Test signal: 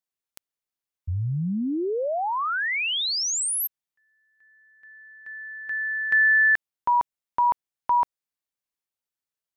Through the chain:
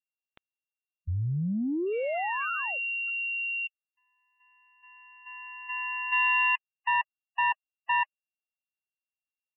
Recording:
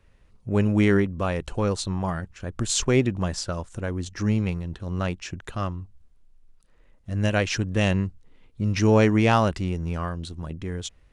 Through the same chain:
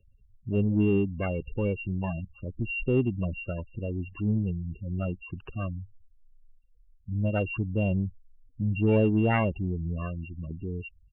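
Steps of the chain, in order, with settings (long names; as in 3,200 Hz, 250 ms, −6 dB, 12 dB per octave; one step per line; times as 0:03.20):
samples sorted by size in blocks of 16 samples
high-shelf EQ 2,800 Hz −4 dB
gate on every frequency bin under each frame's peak −15 dB strong
in parallel at −5 dB: soft clipping −20 dBFS
on the sum: downsampling to 8,000 Hz
level −6 dB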